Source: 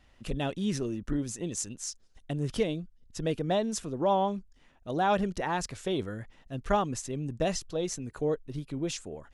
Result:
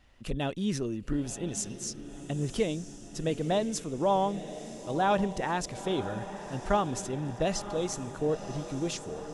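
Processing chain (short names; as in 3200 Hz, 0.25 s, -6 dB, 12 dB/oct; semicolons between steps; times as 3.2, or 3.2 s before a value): diffused feedback echo 0.997 s, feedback 63%, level -12 dB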